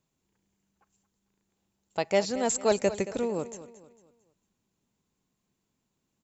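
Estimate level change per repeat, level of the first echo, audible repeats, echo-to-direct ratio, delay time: -8.5 dB, -14.5 dB, 3, -14.0 dB, 225 ms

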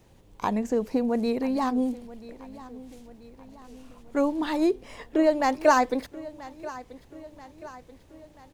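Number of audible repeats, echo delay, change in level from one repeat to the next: 4, 984 ms, -5.5 dB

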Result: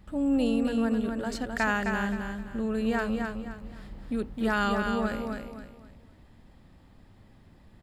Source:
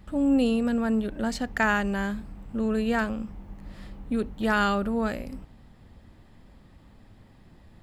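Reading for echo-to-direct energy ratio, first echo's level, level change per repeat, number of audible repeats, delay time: -4.5 dB, -5.0 dB, -10.0 dB, 4, 261 ms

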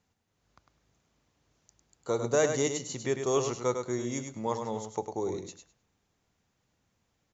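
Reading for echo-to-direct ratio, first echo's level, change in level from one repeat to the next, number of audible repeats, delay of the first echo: -6.5 dB, -6.5 dB, -16.0 dB, 2, 102 ms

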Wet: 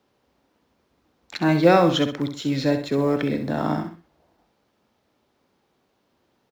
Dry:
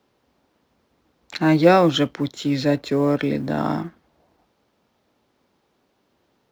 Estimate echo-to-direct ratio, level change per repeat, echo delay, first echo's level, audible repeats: -8.0 dB, -9.0 dB, 65 ms, -8.5 dB, 2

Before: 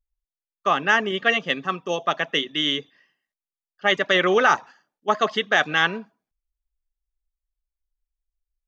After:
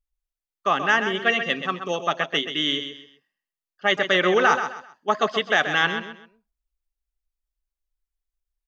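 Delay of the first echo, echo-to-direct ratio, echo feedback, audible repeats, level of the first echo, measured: 130 ms, -8.5 dB, 29%, 3, -9.0 dB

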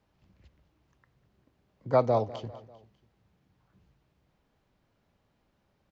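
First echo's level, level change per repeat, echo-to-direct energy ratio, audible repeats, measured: -18.0 dB, -5.5 dB, -16.5 dB, 3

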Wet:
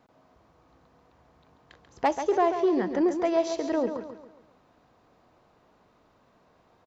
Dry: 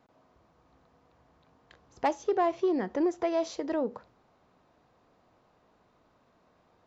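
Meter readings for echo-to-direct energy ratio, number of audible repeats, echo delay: -7.5 dB, 4, 138 ms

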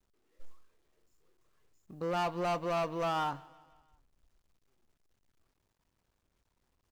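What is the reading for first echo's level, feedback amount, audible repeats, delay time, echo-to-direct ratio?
-23.5 dB, 54%, 3, 167 ms, -22.0 dB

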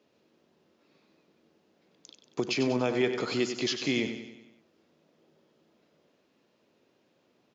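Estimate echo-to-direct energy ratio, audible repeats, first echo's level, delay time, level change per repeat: -7.5 dB, 5, -9.0 dB, 95 ms, -5.5 dB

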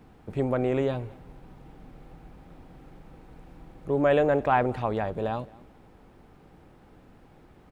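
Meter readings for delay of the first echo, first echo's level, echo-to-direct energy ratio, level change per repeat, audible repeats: 218 ms, -23.5 dB, -23.5 dB, no regular repeats, 1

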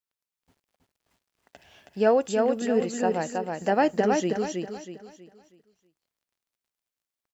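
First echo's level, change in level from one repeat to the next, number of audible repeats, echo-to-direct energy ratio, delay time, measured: -3.5 dB, -9.0 dB, 4, -3.0 dB, 321 ms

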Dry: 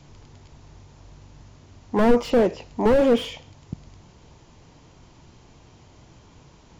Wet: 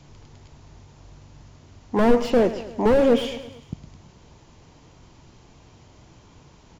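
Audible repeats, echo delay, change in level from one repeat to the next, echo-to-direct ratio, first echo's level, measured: 4, 111 ms, -5.0 dB, -12.5 dB, -14.0 dB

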